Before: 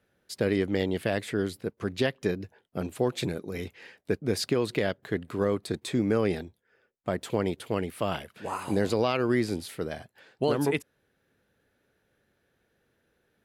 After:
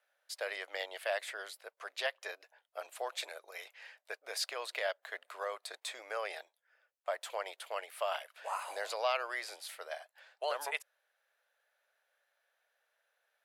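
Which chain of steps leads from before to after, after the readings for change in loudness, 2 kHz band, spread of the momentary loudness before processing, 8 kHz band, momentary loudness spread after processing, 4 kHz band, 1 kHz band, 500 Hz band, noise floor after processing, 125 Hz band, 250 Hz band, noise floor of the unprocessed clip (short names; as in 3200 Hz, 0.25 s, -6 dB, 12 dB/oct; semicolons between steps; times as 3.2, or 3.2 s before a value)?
-10.0 dB, -3.0 dB, 11 LU, -4.0 dB, 12 LU, -3.5 dB, -3.5 dB, -11.5 dB, -82 dBFS, under -40 dB, under -35 dB, -74 dBFS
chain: elliptic high-pass 600 Hz, stop band 70 dB; gain -3 dB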